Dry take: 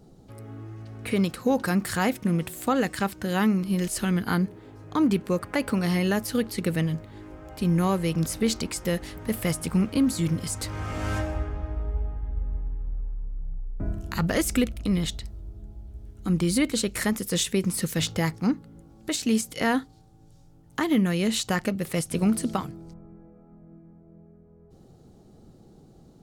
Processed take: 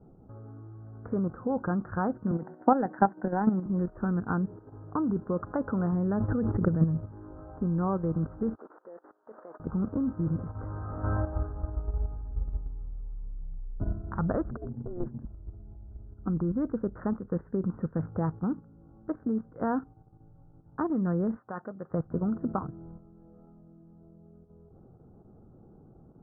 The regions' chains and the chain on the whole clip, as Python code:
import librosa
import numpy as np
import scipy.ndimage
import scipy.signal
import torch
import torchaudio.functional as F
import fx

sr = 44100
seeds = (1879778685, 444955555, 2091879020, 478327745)

y = fx.chain(x, sr, fx.cabinet(low_hz=190.0, low_slope=24, high_hz=6200.0, hz=(430.0, 800.0, 1200.0, 2000.0, 3500.0), db=(-3, 6, -8, 7, -9)),
    fx.transient(attack_db=9, sustain_db=3), at=(2.31, 3.66))
y = fx.chain(y, sr, fx.highpass(hz=54.0, slope=12),
    fx.low_shelf(hz=190.0, db=9.0),
    fx.pre_swell(db_per_s=36.0), at=(5.92, 7.12))
y = fx.chain(y, sr, fx.delta_mod(bps=32000, step_db=-35.0),
    fx.highpass(hz=360.0, slope=24),
    fx.level_steps(step_db=21), at=(8.55, 9.6))
y = fx.chain(y, sr, fx.over_compress(threshold_db=-25.0, ratio=-0.5),
    fx.ring_mod(carrier_hz=180.0),
    fx.spacing_loss(db_at_10k=39), at=(14.51, 15.25))
y = fx.chain(y, sr, fx.highpass(hz=140.0, slope=12),
    fx.low_shelf(hz=440.0, db=-10.5), at=(21.36, 21.91))
y = scipy.signal.sosfilt(scipy.signal.butter(12, 1500.0, 'lowpass', fs=sr, output='sos'), y)
y = fx.peak_eq(y, sr, hz=97.0, db=3.0, octaves=0.67)
y = fx.level_steps(y, sr, step_db=9)